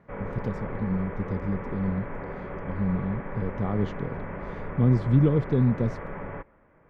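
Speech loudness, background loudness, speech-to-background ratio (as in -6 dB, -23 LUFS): -27.5 LUFS, -37.0 LUFS, 9.5 dB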